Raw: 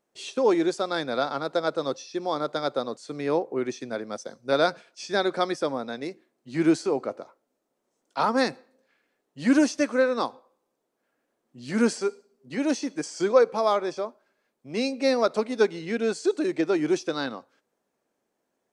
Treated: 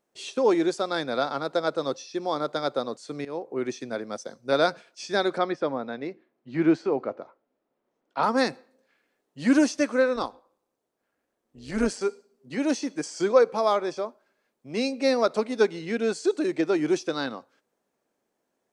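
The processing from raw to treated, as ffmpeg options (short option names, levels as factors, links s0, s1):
-filter_complex "[0:a]asettb=1/sr,asplit=3[s0][s1][s2];[s0]atrim=end=5.384[s3];[s1]atrim=start=5.38:end=8.23,asetpts=PTS-STARTPTS,afade=t=in:d=0.004:c=qsin,afade=t=out:st=2.846:d=0.004:c=qsin,lowpass=2800[s4];[s2]atrim=start=8.226[s5];[s3][s4]acrossfade=d=0.004:c1=hsin:c2=qsin[s6];[s6][s5]acrossfade=d=0.004:c1=qsin:c2=hsin,asettb=1/sr,asplit=3[s7][s8][s9];[s7]atrim=end=10.164[s10];[s8]atrim=start=10.16:end=12.01,asetpts=PTS-STARTPTS,afade=t=in:d=0.004:c=qsin,afade=t=out:st=1.846:d=0.004:c=qsin,tremolo=f=200:d=0.621[s11];[s9]atrim=start=12.006[s12];[s10][s11]acrossfade=d=0.004:c1=hsin:c2=qsin[s13];[s13][s12]acrossfade=d=0.004:c1=qsin:c2=hsin,asplit=2[s14][s15];[s14]atrim=end=3.25,asetpts=PTS-STARTPTS,afade=t=out:st=3.246:d=0.004:c=hsin:silence=0.141254[s16];[s15]atrim=start=3.25,asetpts=PTS-STARTPTS,afade=t=in:d=0.41:silence=0.141254[s17];[s16][s17]concat=n=2:v=0:a=1"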